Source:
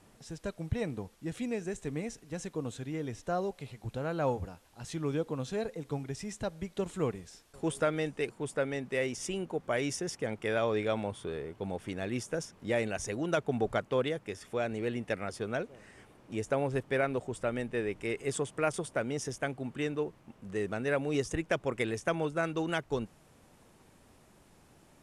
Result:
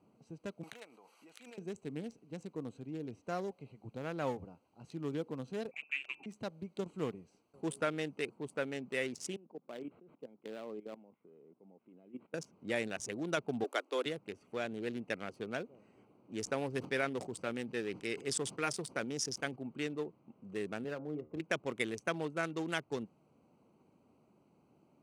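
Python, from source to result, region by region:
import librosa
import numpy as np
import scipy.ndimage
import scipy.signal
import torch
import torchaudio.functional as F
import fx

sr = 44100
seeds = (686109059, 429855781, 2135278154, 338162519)

y = fx.chain(x, sr, fx.highpass(hz=1100.0, slope=12),
    fx.high_shelf(hz=9700.0, db=4.5),
    fx.pre_swell(db_per_s=20.0), at=(0.63, 1.58))
y = fx.chain(y, sr, fx.highpass(hz=130.0, slope=12),
    fx.hum_notches(base_hz=50, count=8),
    fx.freq_invert(carrier_hz=2800), at=(5.71, 6.26))
y = fx.chain(y, sr, fx.level_steps(step_db=16),
    fx.ladder_highpass(hz=150.0, resonance_pct=25),
    fx.resample_linear(factor=8), at=(9.36, 12.34))
y = fx.chain(y, sr, fx.steep_highpass(hz=270.0, slope=72),
    fx.high_shelf(hz=4500.0, db=8.5), at=(13.64, 14.06))
y = fx.chain(y, sr, fx.peak_eq(hz=5100.0, db=8.5, octaves=0.56),
    fx.notch(hz=620.0, q=14.0),
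    fx.sustainer(db_per_s=140.0), at=(16.35, 19.56))
y = fx.chain(y, sr, fx.cheby2_lowpass(hz=5100.0, order=4, stop_db=60),
    fx.comb_fb(f0_hz=76.0, decay_s=0.25, harmonics='all', damping=0.0, mix_pct=70),
    fx.band_squash(depth_pct=100), at=(20.84, 21.4))
y = fx.wiener(y, sr, points=25)
y = scipy.signal.sosfilt(scipy.signal.butter(2, 220.0, 'highpass', fs=sr, output='sos'), y)
y = fx.peak_eq(y, sr, hz=610.0, db=-8.0, octaves=2.4)
y = y * librosa.db_to_amplitude(2.0)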